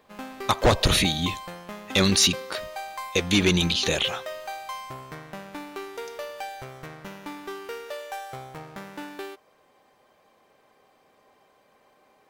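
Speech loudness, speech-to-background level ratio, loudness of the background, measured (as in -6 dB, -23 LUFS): -22.5 LUFS, 15.0 dB, -37.5 LUFS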